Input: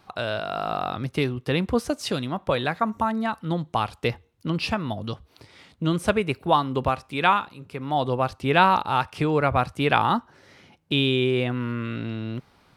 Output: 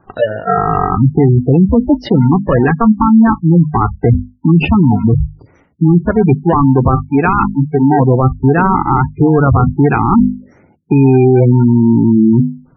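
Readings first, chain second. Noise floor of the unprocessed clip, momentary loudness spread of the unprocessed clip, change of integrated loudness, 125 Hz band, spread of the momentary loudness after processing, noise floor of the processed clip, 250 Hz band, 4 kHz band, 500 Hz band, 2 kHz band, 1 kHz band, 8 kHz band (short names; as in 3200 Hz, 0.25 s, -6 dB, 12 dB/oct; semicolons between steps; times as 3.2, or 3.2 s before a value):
-60 dBFS, 10 LU, +13.5 dB, +18.5 dB, 5 LU, -49 dBFS, +18.0 dB, n/a, +11.5 dB, +4.5 dB, +8.0 dB, under -15 dB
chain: spectral noise reduction 27 dB; LPF 1500 Hz 12 dB/oct; dynamic EQ 620 Hz, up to -6 dB, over -34 dBFS, Q 0.8; in parallel at -3.5 dB: sample-and-hold 38×; on the sum: notches 50/100/150/200/250 Hz; reverse; compressor 16:1, threshold -36 dBFS, peak gain reduction 21 dB; reverse; spectral gate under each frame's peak -20 dB strong; maximiser +34 dB; gain -1 dB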